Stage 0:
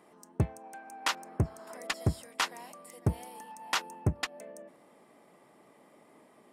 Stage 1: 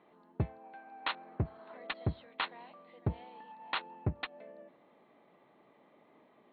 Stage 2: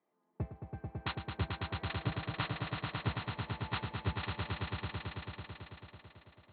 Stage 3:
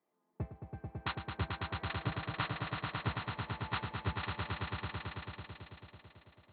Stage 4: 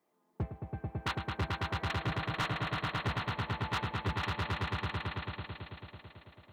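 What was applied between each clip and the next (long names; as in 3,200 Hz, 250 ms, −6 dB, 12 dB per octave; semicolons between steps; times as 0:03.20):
Chebyshev low-pass filter 4,200 Hz, order 8; level −4 dB
echo that builds up and dies away 110 ms, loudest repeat 5, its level −4 dB; multiband upward and downward expander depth 40%; level −5.5 dB
dynamic equaliser 1,300 Hz, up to +4 dB, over −51 dBFS, Q 1; level −1.5 dB
gain into a clipping stage and back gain 33.5 dB; level +5.5 dB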